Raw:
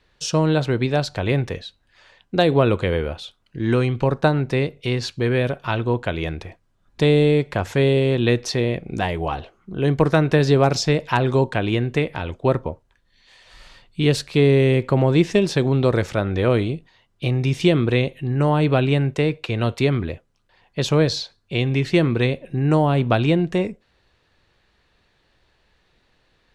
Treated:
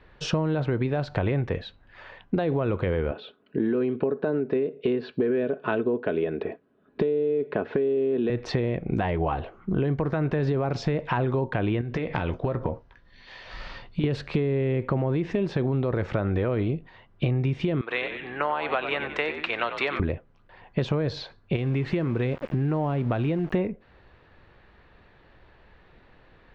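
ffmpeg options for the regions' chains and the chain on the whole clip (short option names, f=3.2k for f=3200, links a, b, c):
-filter_complex "[0:a]asettb=1/sr,asplit=3[a][b][c];[a]atrim=end=3.114[d];[b]atrim=start=3.11:end=8.3,asetpts=PTS-STARTPTS,afade=t=in:d=0.004:c=qsin,afade=t=out:st=5.186:d=0.004:c=qsin,highpass=230,equalizer=f=280:t=q:w=4:g=7,equalizer=f=420:t=q:w=4:g=8,equalizer=f=870:t=q:w=4:g=-8,equalizer=f=1.2k:t=q:w=4:g=-6,equalizer=f=2.1k:t=q:w=4:g=-8,equalizer=f=3.2k:t=q:w=4:g=-4,lowpass=f=3.8k:w=0.5412,lowpass=f=3.8k:w=1.3066,aecho=1:1:4.7:0.35,atrim=end_sample=228879[e];[c]atrim=start=8.296[f];[d][e]acrossfade=d=0.004:c1=hsin:c2=qsin[g];[g][f]acrossfade=d=0.004:c1=qsin:c2=hsin,asettb=1/sr,asplit=3[h][i][j];[h]atrim=end=11.814[k];[i]atrim=start=11.81:end=14.04,asetpts=PTS-STARTPTS,afade=t=in:d=0.004:c=qsin,afade=t=out:st=2.226:d=0.004:c=qsin,lowpass=f=5.5k:t=q:w=2.8,acompressor=threshold=-28dB:ratio=12:attack=3.2:release=140:knee=1:detection=peak,asplit=2[l][m];[m]adelay=17,volume=-11dB[n];[l][n]amix=inputs=2:normalize=0,atrim=end_sample=98343[o];[j]atrim=start=14.036[p];[k][o]acrossfade=d=0.004:c1=hsin:c2=qsin[q];[q][p]acrossfade=d=0.004:c1=qsin:c2=hsin,asettb=1/sr,asplit=3[r][s][t];[r]atrim=end=17.814[u];[s]atrim=start=17.81:end=20,asetpts=PTS-STARTPTS,afade=t=in:d=0.004:c=qsin,afade=t=out:st=2.186:d=0.004:c=qsin,highpass=1k,asplit=6[v][w][x][y][z][aa];[w]adelay=92,afreqshift=-68,volume=-11dB[ab];[x]adelay=184,afreqshift=-136,volume=-17.7dB[ac];[y]adelay=276,afreqshift=-204,volume=-24.5dB[ad];[z]adelay=368,afreqshift=-272,volume=-31.2dB[ae];[aa]adelay=460,afreqshift=-340,volume=-38dB[af];[v][ab][ac][ad][ae][af]amix=inputs=6:normalize=0,atrim=end_sample=96579[ag];[t]atrim=start=19.996[ah];[u][ag]acrossfade=d=0.004:c1=hsin:c2=qsin[ai];[ai][ah]acrossfade=d=0.004:c1=qsin:c2=hsin,asettb=1/sr,asplit=3[aj][ak][al];[aj]atrim=end=21.564[am];[ak]atrim=start=21.56:end=23.53,asetpts=PTS-STARTPTS,afade=t=in:d=0.004:c=qsin,afade=t=out:st=1.966:d=0.004:c=qsin,acompressor=threshold=-32dB:ratio=2:attack=3.2:release=140:knee=1:detection=peak,aeval=exprs='val(0)*gte(abs(val(0)),0.00944)':c=same[an];[al]atrim=start=23.526[ao];[am][an]acrossfade=d=0.004:c1=hsin:c2=qsin[ap];[ap][ao]acrossfade=d=0.004:c1=qsin:c2=hsin,lowpass=2k,alimiter=limit=-13.5dB:level=0:latency=1:release=33,acompressor=threshold=-31dB:ratio=10,volume=9dB"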